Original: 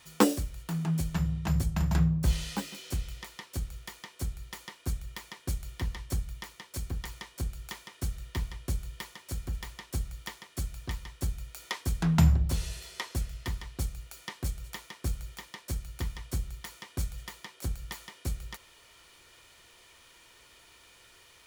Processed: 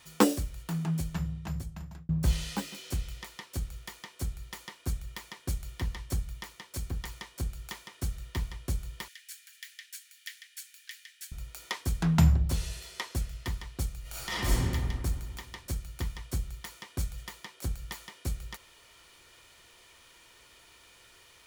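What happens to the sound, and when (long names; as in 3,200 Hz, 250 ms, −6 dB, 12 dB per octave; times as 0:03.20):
0:00.73–0:02.09: fade out
0:09.08–0:11.32: Chebyshev high-pass filter 1,600 Hz, order 5
0:14.01–0:14.57: thrown reverb, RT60 2 s, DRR −11 dB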